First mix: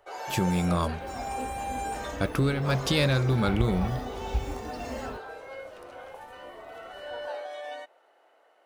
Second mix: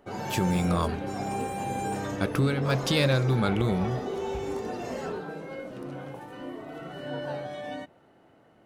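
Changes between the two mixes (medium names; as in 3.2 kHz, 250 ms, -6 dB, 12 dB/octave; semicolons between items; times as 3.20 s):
first sound: remove high-pass 500 Hz 24 dB/octave; second sound: add band-pass 120–2900 Hz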